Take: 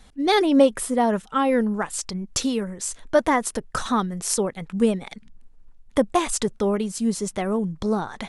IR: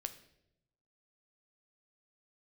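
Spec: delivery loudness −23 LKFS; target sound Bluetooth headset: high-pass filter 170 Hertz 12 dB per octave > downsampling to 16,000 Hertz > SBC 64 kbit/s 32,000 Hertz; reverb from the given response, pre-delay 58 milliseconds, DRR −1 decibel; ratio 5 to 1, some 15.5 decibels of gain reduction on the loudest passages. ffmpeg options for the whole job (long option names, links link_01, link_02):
-filter_complex "[0:a]acompressor=threshold=-30dB:ratio=5,asplit=2[link_01][link_02];[1:a]atrim=start_sample=2205,adelay=58[link_03];[link_02][link_03]afir=irnorm=-1:irlink=0,volume=3dB[link_04];[link_01][link_04]amix=inputs=2:normalize=0,highpass=170,aresample=16000,aresample=44100,volume=8dB" -ar 32000 -c:a sbc -b:a 64k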